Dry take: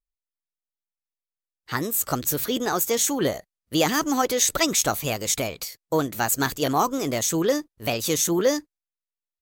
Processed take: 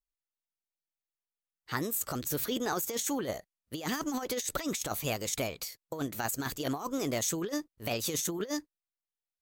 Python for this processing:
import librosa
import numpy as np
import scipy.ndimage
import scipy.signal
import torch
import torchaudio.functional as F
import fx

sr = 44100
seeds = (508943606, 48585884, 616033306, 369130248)

y = fx.over_compress(x, sr, threshold_db=-24.0, ratio=-0.5)
y = y * librosa.db_to_amplitude(-8.0)